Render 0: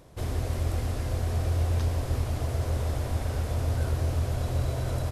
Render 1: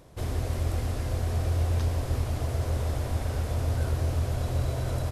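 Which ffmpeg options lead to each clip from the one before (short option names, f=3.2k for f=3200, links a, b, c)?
-af anull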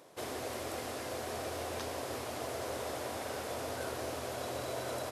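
-af "highpass=360"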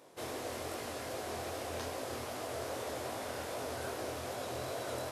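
-af "flanger=delay=18.5:depth=7:speed=2.5,volume=2dB"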